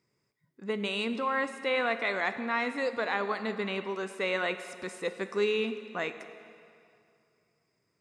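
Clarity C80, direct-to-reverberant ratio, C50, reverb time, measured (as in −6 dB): 11.5 dB, 9.5 dB, 10.5 dB, 2.5 s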